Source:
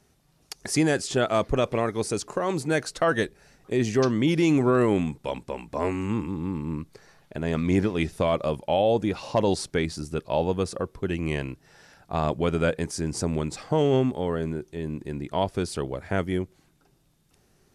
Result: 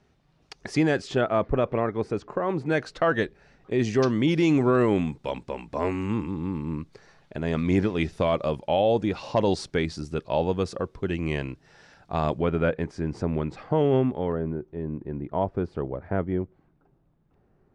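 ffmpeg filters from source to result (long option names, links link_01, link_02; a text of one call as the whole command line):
ffmpeg -i in.wav -af "asetnsamples=nb_out_samples=441:pad=0,asendcmd='1.21 lowpass f 1900;2.66 lowpass f 3400;3.79 lowpass f 5600;12.41 lowpass f 2300;14.32 lowpass f 1200',lowpass=3600" out.wav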